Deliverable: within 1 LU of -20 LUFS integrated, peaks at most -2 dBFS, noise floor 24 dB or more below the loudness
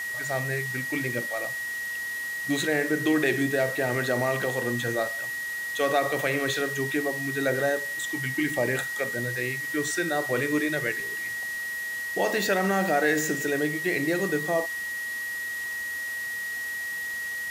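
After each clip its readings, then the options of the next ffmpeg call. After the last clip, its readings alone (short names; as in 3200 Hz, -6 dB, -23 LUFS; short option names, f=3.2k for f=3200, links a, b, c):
steady tone 1900 Hz; tone level -30 dBFS; noise floor -33 dBFS; noise floor target -51 dBFS; loudness -27.0 LUFS; peak -11.0 dBFS; loudness target -20.0 LUFS
-> -af "bandreject=f=1.9k:w=30"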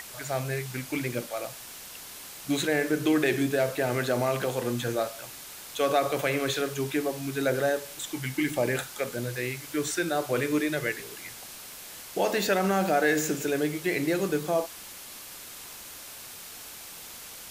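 steady tone none; noise floor -44 dBFS; noise floor target -52 dBFS
-> -af "afftdn=nr=8:nf=-44"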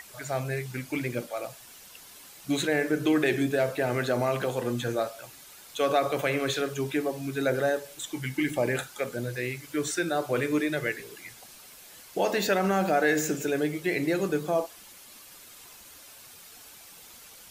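noise floor -50 dBFS; noise floor target -53 dBFS
-> -af "afftdn=nr=6:nf=-50"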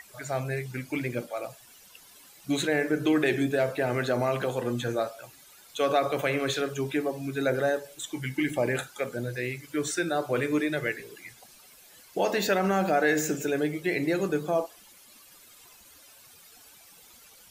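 noise floor -54 dBFS; loudness -28.5 LUFS; peak -12.0 dBFS; loudness target -20.0 LUFS
-> -af "volume=8.5dB"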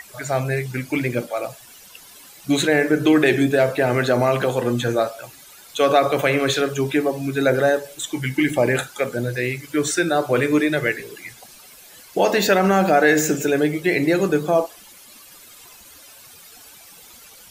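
loudness -20.0 LUFS; peak -3.5 dBFS; noise floor -46 dBFS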